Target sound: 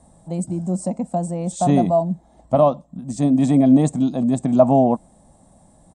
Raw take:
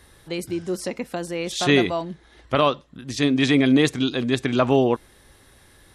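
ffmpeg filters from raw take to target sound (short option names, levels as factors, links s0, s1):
-af "firequalizer=gain_entry='entry(110,0);entry(180,14);entry(400,-8);entry(650,12);entry(1500,-17);entry(2900,-18);entry(5600,-10);entry(8200,9);entry(12000,-28)':delay=0.05:min_phase=1,volume=0.891"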